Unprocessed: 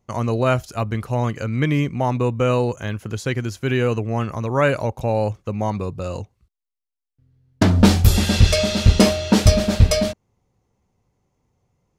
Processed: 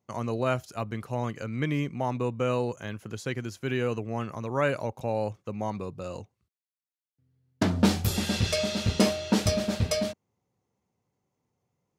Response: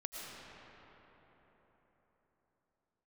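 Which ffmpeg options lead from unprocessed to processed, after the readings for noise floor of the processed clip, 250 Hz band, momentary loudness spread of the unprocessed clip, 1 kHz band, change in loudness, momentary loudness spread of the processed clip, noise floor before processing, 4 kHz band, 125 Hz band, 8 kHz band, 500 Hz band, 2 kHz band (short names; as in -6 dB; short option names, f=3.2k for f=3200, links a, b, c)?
under -85 dBFS, -8.5 dB, 11 LU, -8.0 dB, -9.5 dB, 11 LU, -84 dBFS, -8.0 dB, -12.0 dB, -8.0 dB, -8.0 dB, -8.0 dB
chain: -af "highpass=120,volume=-8dB"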